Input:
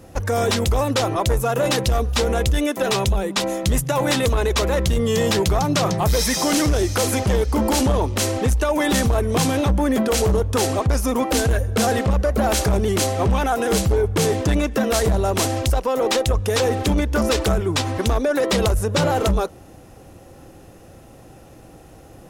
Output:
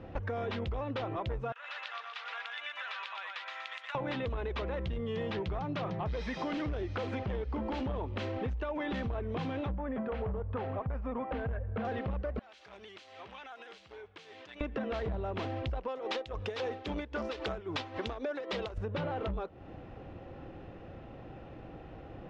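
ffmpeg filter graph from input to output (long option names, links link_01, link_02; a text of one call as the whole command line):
ffmpeg -i in.wav -filter_complex "[0:a]asettb=1/sr,asplit=3[link_01][link_02][link_03];[link_01]atrim=end=1.524[link_04];[link_02]atrim=start=1.52:end=3.95,asetpts=PTS-STARTPTS,afade=type=in:duration=0.004:curve=qsin,afade=type=out:start_time=2.426:duration=0.004:curve=qsin,highpass=frequency=1200:width=0.5412,highpass=frequency=1200:width=1.3066,acompressor=threshold=-33dB:ratio=5:attack=3.2:release=140:knee=1:detection=peak,aecho=1:1:121|242|363|484|605|726:0.668|0.314|0.148|0.0694|0.0326|0.0153,atrim=end_sample=107163[link_05];[link_03]atrim=start=3.946[link_06];[link_04][link_05]acrossfade=duration=0.004:curve1=hsin:curve2=qsin[link_07];[link_07][link_06]acrossfade=duration=0.004:curve1=qsin:curve2=hsin,asettb=1/sr,asplit=3[link_08][link_09][link_10];[link_08]atrim=end=9.754[link_11];[link_09]atrim=start=9.75:end=11.85,asetpts=PTS-STARTPTS,afade=type=in:duration=0.004:curve=qsin,afade=type=out:start_time=2.096:duration=0.004:curve=qsin,lowpass=1800,equalizer=frequency=330:width=3.6:gain=-11.5[link_12];[link_10]atrim=start=11.846[link_13];[link_11][link_12]acrossfade=duration=0.004:curve1=hsin:curve2=qsin[link_14];[link_14][link_13]acrossfade=duration=0.004:curve1=qsin:curve2=hsin,asettb=1/sr,asplit=3[link_15][link_16][link_17];[link_15]atrim=end=12.394[link_18];[link_16]atrim=start=12.39:end=14.61,asetpts=PTS-STARTPTS,afade=type=in:duration=0.004:curve=qsin,afade=type=out:start_time=2.216:duration=0.004:curve=qsin,aderivative,acompressor=threshold=-39dB:ratio=3:attack=3.2:release=140:knee=1:detection=peak[link_19];[link_17]atrim=start=14.606[link_20];[link_18][link_19]acrossfade=duration=0.004:curve1=hsin:curve2=qsin[link_21];[link_21][link_20]acrossfade=duration=0.004:curve1=qsin:curve2=hsin,asettb=1/sr,asplit=3[link_22][link_23][link_24];[link_22]atrim=end=15.884[link_25];[link_23]atrim=start=15.88:end=18.78,asetpts=PTS-STARTPTS,afade=type=in:duration=0.004:curve=qsin,afade=type=out:start_time=2.896:duration=0.004:curve=qsin,bass=frequency=250:gain=-9,treble=frequency=4000:gain=12,tremolo=f=3.7:d=0.73[link_26];[link_24]atrim=start=18.776[link_27];[link_25][link_26]acrossfade=duration=0.004:curve1=hsin:curve2=qsin[link_28];[link_28][link_27]acrossfade=duration=0.004:curve1=qsin:curve2=hsin,lowpass=frequency=3200:width=0.5412,lowpass=frequency=3200:width=1.3066,acompressor=threshold=-31dB:ratio=6,volume=-3dB" out.wav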